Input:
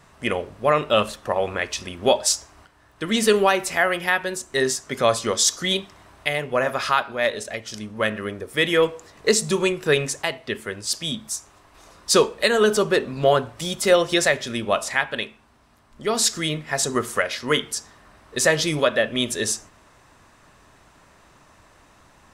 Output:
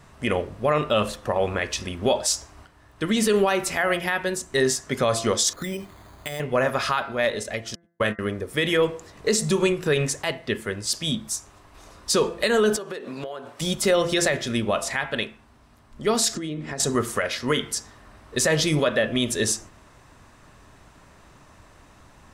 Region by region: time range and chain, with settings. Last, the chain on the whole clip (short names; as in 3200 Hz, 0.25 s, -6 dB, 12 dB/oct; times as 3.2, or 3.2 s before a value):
5.53–6.4 careless resampling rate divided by 8×, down filtered, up hold + compressor, threshold -28 dBFS
7.75–8.19 doubler 25 ms -9 dB + gate -28 dBFS, range -55 dB
12.76–13.6 HPF 320 Hz + compressor 16:1, threshold -30 dBFS
16.35–16.8 LPF 9200 Hz 24 dB/oct + bell 300 Hz +11 dB 1.4 oct + compressor 12:1, threshold -29 dBFS
whole clip: low shelf 280 Hz +6 dB; de-hum 170.3 Hz, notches 12; limiter -11.5 dBFS